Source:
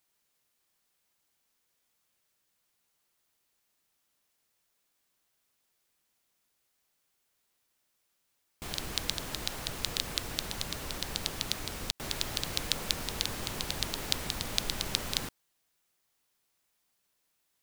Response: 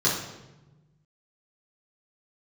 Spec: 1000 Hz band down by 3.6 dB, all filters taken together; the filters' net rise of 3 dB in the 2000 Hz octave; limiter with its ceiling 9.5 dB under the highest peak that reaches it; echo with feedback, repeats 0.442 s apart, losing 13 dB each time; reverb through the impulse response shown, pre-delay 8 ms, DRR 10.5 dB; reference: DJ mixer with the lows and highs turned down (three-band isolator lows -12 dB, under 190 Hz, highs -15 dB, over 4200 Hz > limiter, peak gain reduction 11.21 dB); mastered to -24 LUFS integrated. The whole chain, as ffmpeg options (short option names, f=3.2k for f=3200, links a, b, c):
-filter_complex "[0:a]equalizer=f=1k:t=o:g=-6.5,equalizer=f=2k:t=o:g=6,alimiter=limit=-12dB:level=0:latency=1,aecho=1:1:442|884|1326:0.224|0.0493|0.0108,asplit=2[a][b];[1:a]atrim=start_sample=2205,adelay=8[c];[b][c]afir=irnorm=-1:irlink=0,volume=-24.5dB[d];[a][d]amix=inputs=2:normalize=0,acrossover=split=190 4200:gain=0.251 1 0.178[e][f][g];[e][f][g]amix=inputs=3:normalize=0,volume=17.5dB,alimiter=limit=-9.5dB:level=0:latency=1"